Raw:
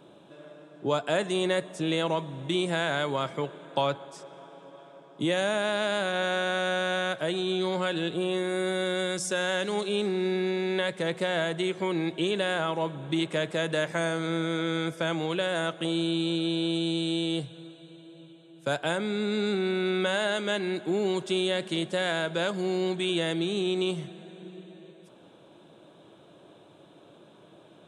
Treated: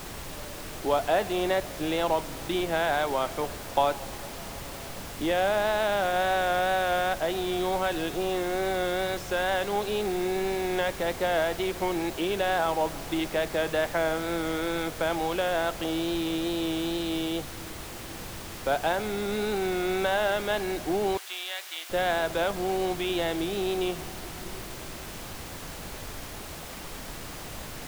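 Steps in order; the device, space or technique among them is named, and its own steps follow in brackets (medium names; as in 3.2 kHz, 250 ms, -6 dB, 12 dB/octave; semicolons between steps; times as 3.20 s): horn gramophone (band-pass 250–3300 Hz; peaking EQ 760 Hz +10 dB 0.34 oct; wow and flutter; pink noise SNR 10 dB); 21.17–21.90 s: high-pass 1.5 kHz 12 dB/octave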